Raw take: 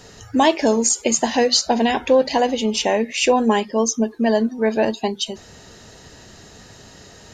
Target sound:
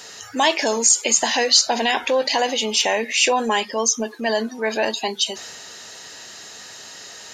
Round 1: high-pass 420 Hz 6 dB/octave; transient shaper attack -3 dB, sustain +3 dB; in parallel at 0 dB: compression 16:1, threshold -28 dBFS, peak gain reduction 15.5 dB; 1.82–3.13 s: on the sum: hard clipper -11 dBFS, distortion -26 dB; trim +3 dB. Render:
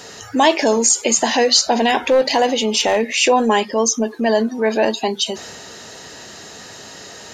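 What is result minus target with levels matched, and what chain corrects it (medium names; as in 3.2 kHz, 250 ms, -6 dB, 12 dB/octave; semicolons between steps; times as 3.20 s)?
500 Hz band +3.5 dB
high-pass 1.6 kHz 6 dB/octave; transient shaper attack -3 dB, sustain +3 dB; in parallel at 0 dB: compression 16:1, threshold -28 dBFS, peak gain reduction 14 dB; 1.82–3.13 s: on the sum: hard clipper -11 dBFS, distortion -45 dB; trim +3 dB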